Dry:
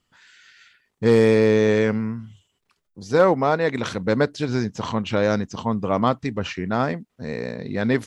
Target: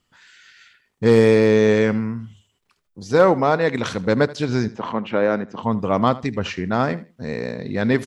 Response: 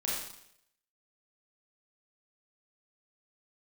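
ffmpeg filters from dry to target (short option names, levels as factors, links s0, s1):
-filter_complex "[0:a]asettb=1/sr,asplit=3[s0][s1][s2];[s0]atrim=end=4.684[s3];[s1]atrim=start=4.68:end=5.63,asetpts=PTS-STARTPTS,afade=t=in:d=0.004:c=qsin,afade=t=out:st=0.946:d=0.004:c=qsin,acrossover=split=180 2800:gain=0.126 1 0.1[s4][s5][s6];[s4][s5][s6]amix=inputs=3:normalize=0[s7];[s2]atrim=start=5.626[s8];[s3][s7]acrossfade=d=0.004:c1=hsin:c2=qsin[s9];[s9][s8]acrossfade=d=0.004:c1=qsin:c2=hsin,asplit=2[s10][s11];[s11]aecho=0:1:79|158:0.119|0.0285[s12];[s10][s12]amix=inputs=2:normalize=0,volume=1.26"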